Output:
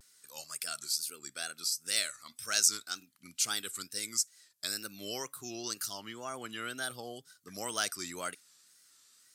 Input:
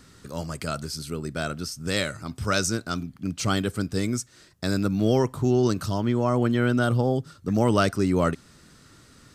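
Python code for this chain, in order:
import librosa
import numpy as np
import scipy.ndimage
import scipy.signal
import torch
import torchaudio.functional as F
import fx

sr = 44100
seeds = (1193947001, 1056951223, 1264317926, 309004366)

y = fx.noise_reduce_blind(x, sr, reduce_db=7)
y = np.diff(y, prepend=0.0)
y = fx.wow_flutter(y, sr, seeds[0], rate_hz=2.1, depth_cents=130.0)
y = y * 10.0 ** (4.0 / 20.0)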